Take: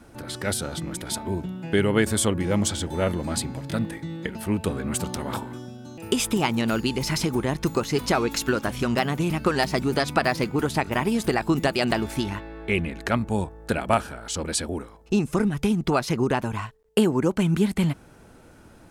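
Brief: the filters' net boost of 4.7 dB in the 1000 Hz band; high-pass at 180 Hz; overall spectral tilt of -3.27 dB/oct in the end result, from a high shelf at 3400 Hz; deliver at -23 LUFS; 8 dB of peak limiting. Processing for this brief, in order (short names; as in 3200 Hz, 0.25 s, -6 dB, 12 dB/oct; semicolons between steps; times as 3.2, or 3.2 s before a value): HPF 180 Hz; bell 1000 Hz +5.5 dB; high shelf 3400 Hz +8 dB; gain +1.5 dB; limiter -7.5 dBFS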